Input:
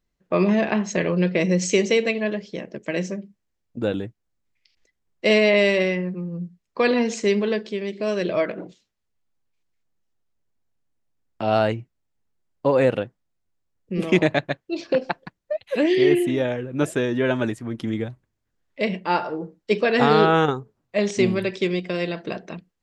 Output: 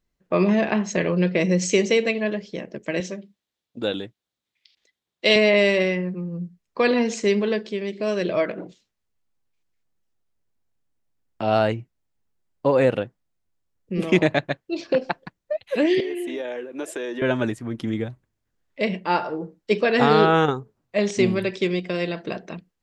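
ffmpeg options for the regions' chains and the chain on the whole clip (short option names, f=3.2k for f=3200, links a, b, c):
-filter_complex "[0:a]asettb=1/sr,asplit=3[a][b][c];[a]atrim=end=3.004[d];[b]atrim=start=3:end=5.36,asetpts=PTS-STARTPTS,afade=t=in:d=0.004:c=qsin,afade=t=out:st=2.356:d=0.004:c=qsin,highpass=f=290:p=1,equalizer=f=3.6k:w=2.3:g=10.5[e];[c]atrim=start=5.356[f];[d][e]acrossfade=d=0.004:c1=hsin:c2=qsin[g];[g][f]acrossfade=d=0.004:c1=qsin:c2=hsin,asettb=1/sr,asplit=3[h][i][j];[h]atrim=end=16.004[k];[i]atrim=start=16:end=17.22,asetpts=PTS-STARTPTS,afade=t=in:d=0.004:c=qsin,afade=t=out:st=1.216:d=0.004:c=qsin,highpass=f=310:w=0.5412,highpass=f=310:w=1.3066,bandreject=f=1.3k:w=12,acompressor=threshold=-26dB:ratio=5:attack=3.2:release=140:knee=1:detection=peak[l];[j]atrim=start=17.216[m];[k][l]acrossfade=d=0.004:c1=hsin:c2=qsin[n];[n][m]acrossfade=d=0.004:c1=qsin:c2=hsin"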